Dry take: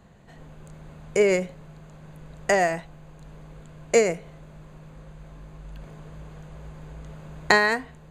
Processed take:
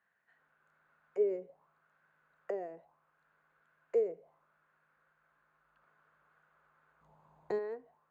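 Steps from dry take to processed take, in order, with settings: 7.01–7.59 s: tone controls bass +11 dB, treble +9 dB; auto-wah 430–1700 Hz, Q 4.5, down, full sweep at -21 dBFS; trim -9 dB

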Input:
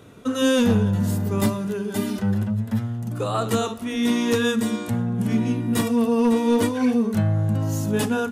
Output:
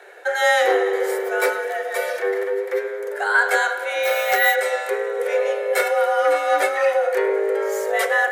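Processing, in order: high-order bell 1.5 kHz +11.5 dB 1.1 oct; thinning echo 103 ms, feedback 83%, level -21 dB; frequency shift +290 Hz; 4.03–4.55 s: careless resampling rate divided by 3×, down none, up hold; spring tank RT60 1.9 s, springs 31/52 ms, chirp 45 ms, DRR 9 dB

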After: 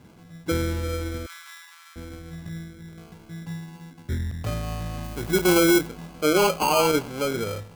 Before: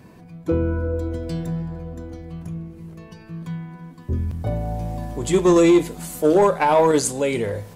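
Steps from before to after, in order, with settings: distance through air 170 m; sample-and-hold 24×; 1.26–1.96 s: steep high-pass 980 Hz 48 dB/octave; 5.04–5.87 s: treble shelf 10 kHz +9 dB; trim -4 dB

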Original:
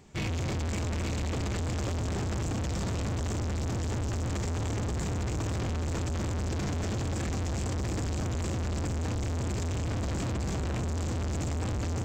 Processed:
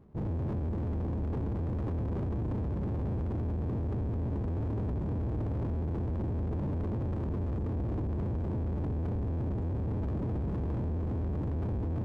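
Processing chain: elliptic low-pass 780 Hz, stop band 40 dB; sliding maximum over 33 samples

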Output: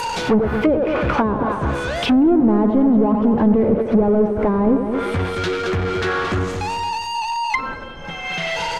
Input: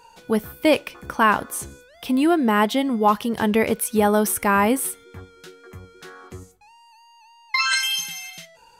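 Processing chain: speakerphone echo 90 ms, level -9 dB; power-law waveshaper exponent 0.35; on a send: feedback delay 222 ms, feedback 31%, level -8 dB; on the sum: low-pass that closes with the level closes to 500 Hz, closed at -8.5 dBFS; trim -2 dB

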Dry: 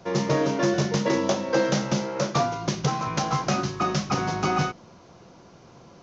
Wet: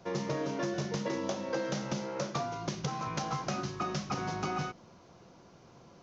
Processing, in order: compression 4:1, threshold -24 dBFS, peak gain reduction 6.5 dB; trim -6.5 dB

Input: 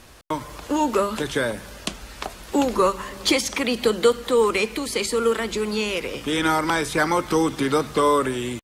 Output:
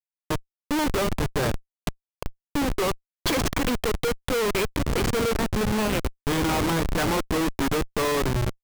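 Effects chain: 2.05–2.82 s: touch-sensitive flanger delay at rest 3.2 ms, full sweep at -17 dBFS; Schmitt trigger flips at -21.5 dBFS

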